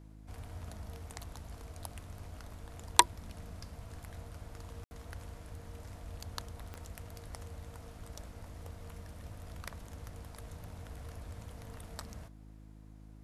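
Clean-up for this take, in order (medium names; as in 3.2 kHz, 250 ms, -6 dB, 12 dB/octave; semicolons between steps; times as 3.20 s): de-click; de-hum 52.7 Hz, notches 6; room tone fill 4.84–4.91 s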